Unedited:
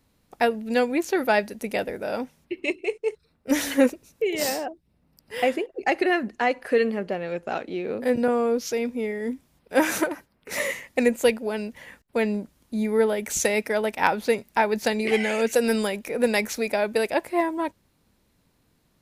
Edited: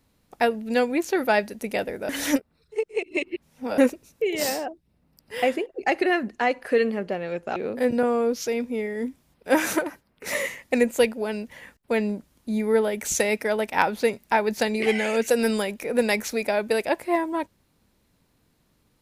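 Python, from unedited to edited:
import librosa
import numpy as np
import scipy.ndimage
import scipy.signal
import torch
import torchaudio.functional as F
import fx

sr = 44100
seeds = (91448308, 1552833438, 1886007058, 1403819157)

y = fx.edit(x, sr, fx.reverse_span(start_s=2.09, length_s=1.69),
    fx.cut(start_s=7.56, length_s=0.25), tone=tone)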